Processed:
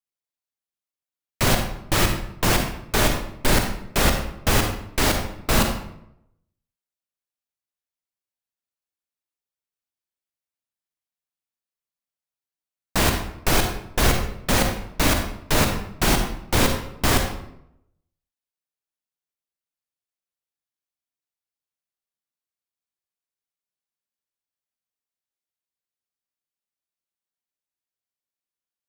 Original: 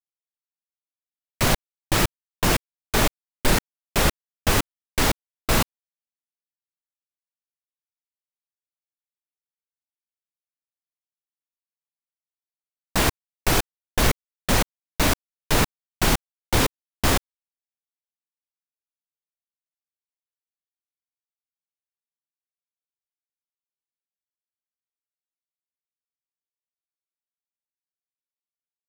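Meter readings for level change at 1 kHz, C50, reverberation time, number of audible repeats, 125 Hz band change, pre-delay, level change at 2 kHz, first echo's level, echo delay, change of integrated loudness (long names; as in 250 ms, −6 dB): +1.5 dB, 5.0 dB, 0.80 s, no echo audible, +2.0 dB, 39 ms, +1.5 dB, no echo audible, no echo audible, +1.5 dB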